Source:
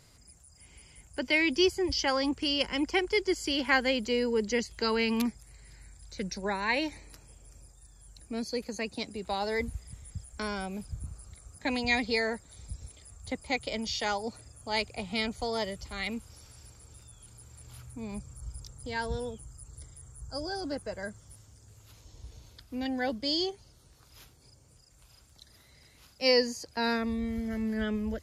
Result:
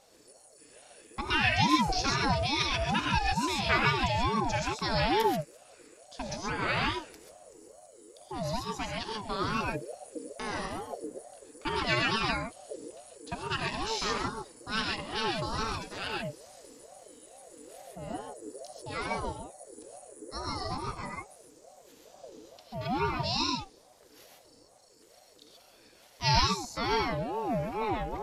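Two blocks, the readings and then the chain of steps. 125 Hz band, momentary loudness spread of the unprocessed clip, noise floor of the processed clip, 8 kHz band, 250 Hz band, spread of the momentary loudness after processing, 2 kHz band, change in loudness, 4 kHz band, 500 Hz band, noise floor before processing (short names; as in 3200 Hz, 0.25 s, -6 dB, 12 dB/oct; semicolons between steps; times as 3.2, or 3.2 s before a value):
+8.0 dB, 19 LU, -59 dBFS, +1.5 dB, -3.0 dB, 20 LU, 0.0 dB, +0.5 dB, +0.5 dB, -3.5 dB, -59 dBFS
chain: non-linear reverb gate 0.16 s rising, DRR -0.5 dB; ring modulator with a swept carrier 520 Hz, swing 30%, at 2.3 Hz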